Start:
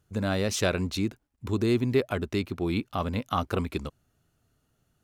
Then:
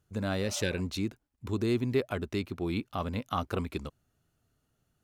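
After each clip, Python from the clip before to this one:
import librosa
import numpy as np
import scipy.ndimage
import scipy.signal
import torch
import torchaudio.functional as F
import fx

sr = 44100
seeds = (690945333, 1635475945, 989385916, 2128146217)

y = fx.spec_repair(x, sr, seeds[0], start_s=0.45, length_s=0.32, low_hz=580.0, high_hz=1500.0, source='before')
y = y * librosa.db_to_amplitude(-4.0)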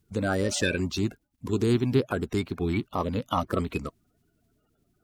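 y = fx.spec_quant(x, sr, step_db=30)
y = y * librosa.db_to_amplitude(5.5)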